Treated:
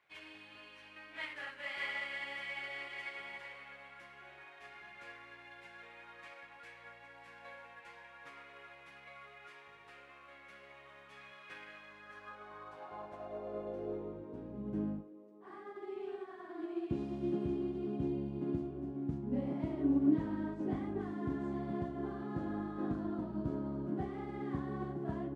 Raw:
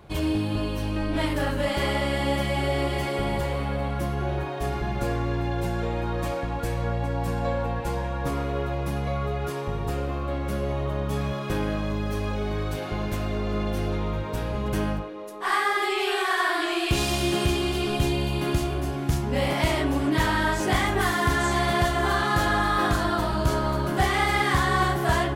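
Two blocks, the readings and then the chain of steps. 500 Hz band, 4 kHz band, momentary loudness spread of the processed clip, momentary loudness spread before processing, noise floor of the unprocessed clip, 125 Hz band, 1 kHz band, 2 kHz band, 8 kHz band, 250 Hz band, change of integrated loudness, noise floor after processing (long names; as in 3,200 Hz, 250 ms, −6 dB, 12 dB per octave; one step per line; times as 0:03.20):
−16.0 dB, −22.0 dB, 16 LU, 7 LU, −31 dBFS, −19.0 dB, −22.5 dB, −17.5 dB, below −30 dB, −9.5 dB, −13.5 dB, −57 dBFS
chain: variable-slope delta modulation 64 kbit/s
band-pass filter sweep 2,100 Hz → 250 Hz, 0:11.79–0:14.63
expander for the loud parts 1.5 to 1, over −44 dBFS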